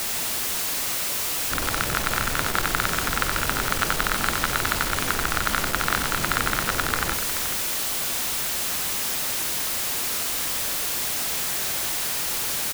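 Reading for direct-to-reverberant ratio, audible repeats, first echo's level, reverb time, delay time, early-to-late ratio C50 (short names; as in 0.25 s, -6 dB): none, 2, -8.0 dB, none, 92 ms, none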